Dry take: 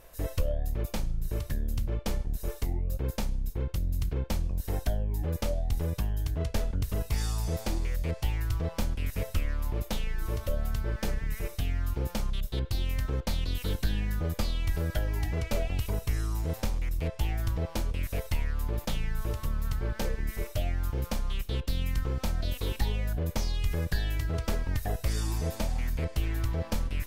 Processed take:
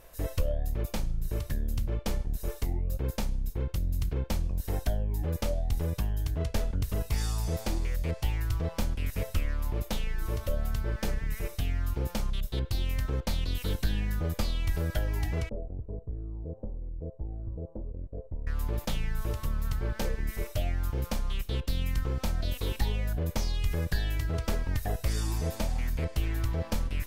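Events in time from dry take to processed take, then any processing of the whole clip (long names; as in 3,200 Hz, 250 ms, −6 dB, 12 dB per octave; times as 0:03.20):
0:15.49–0:18.47: transistor ladder low-pass 600 Hz, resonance 35%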